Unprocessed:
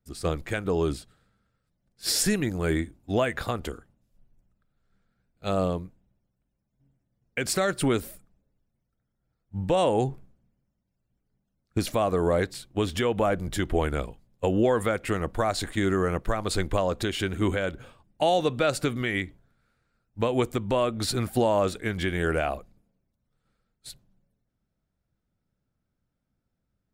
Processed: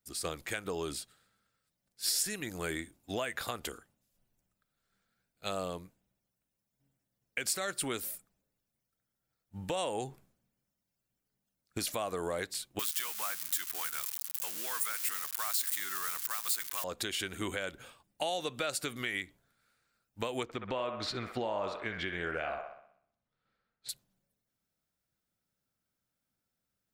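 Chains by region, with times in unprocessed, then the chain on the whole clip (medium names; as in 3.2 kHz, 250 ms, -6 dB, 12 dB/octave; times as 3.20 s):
12.79–16.84 s: zero-crossing glitches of -21 dBFS + high-pass 220 Hz 6 dB/octave + resonant low shelf 780 Hz -12 dB, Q 1.5
20.43–23.89 s: distance through air 210 m + feedback echo behind a band-pass 63 ms, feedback 50%, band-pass 1.1 kHz, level -4 dB
whole clip: tilt EQ +3 dB/octave; compression 2.5:1, threshold -31 dBFS; trim -3 dB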